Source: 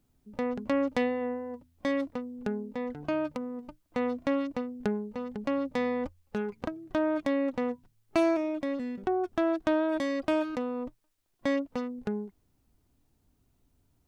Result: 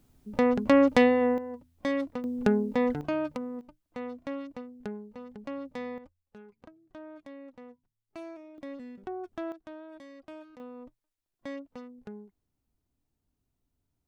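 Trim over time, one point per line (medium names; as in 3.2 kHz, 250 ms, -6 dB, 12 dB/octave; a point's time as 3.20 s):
+7.5 dB
from 1.38 s 0 dB
from 2.24 s +8.5 dB
from 3.01 s 0 dB
from 3.61 s -8 dB
from 5.98 s -18 dB
from 8.58 s -9 dB
from 9.52 s -18.5 dB
from 10.60 s -11 dB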